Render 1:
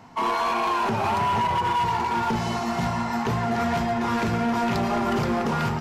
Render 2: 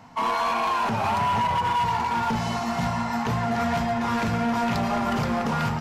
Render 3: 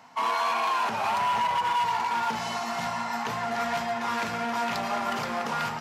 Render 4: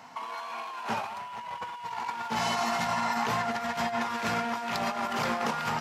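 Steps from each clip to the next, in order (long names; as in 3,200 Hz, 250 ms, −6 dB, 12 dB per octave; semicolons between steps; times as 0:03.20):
parametric band 370 Hz −14.5 dB 0.21 octaves
high-pass filter 730 Hz 6 dB per octave
compressor whose output falls as the input rises −31 dBFS, ratio −0.5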